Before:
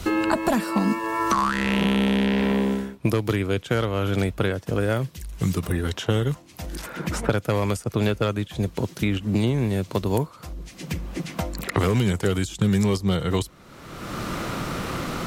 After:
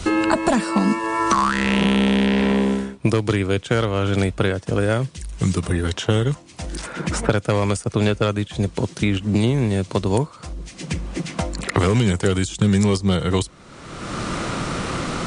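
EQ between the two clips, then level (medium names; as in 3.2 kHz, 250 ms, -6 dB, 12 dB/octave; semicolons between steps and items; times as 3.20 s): brick-wall FIR low-pass 10 kHz; treble shelf 7.5 kHz +5 dB; +3.5 dB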